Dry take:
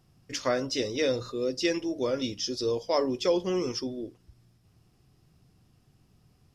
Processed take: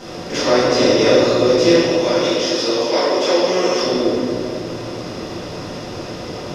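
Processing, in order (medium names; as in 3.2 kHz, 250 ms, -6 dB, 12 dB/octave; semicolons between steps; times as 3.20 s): spectral levelling over time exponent 0.4; 1.81–3.80 s: high-pass 560 Hz 6 dB/octave; reverberation RT60 2.2 s, pre-delay 4 ms, DRR -12.5 dB; trim -4 dB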